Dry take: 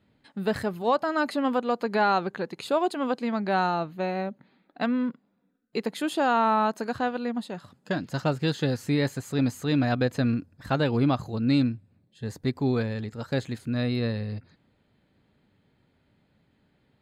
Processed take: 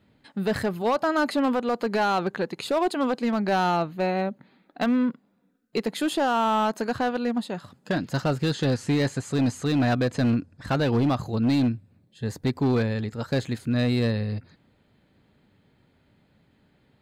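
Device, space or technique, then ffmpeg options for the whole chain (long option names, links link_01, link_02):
limiter into clipper: -filter_complex "[0:a]asettb=1/sr,asplit=3[link_01][link_02][link_03];[link_01]atrim=end=8.454[link_04];[link_02]atrim=start=8.45:end=10.68,asetpts=PTS-STARTPTS,afade=type=in:duration=0.004:curve=qsin,afade=type=out:start_time=2.226:duration=0.004:curve=qsin,lowpass=frequency=9900:width=0.5412,lowpass=frequency=9900:width=1.3066[link_05];[link_03]atrim=start=10.676[link_06];[link_04][link_05]acrossfade=duration=0.004:curve1=hsin:curve2=qsin[link_07];[link_07][link_06]acrossfade=duration=0.004:curve1=qsin:curve2=hsin,alimiter=limit=-17.5dB:level=0:latency=1:release=25,asoftclip=type=hard:threshold=-21.5dB,volume=4dB"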